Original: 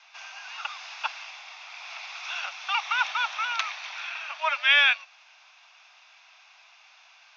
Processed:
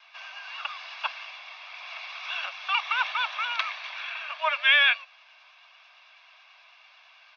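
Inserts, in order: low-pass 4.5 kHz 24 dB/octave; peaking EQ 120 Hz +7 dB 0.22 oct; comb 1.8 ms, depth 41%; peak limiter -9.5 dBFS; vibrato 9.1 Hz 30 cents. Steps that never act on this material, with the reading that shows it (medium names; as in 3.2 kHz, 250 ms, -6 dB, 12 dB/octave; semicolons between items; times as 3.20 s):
peaking EQ 120 Hz: input has nothing below 540 Hz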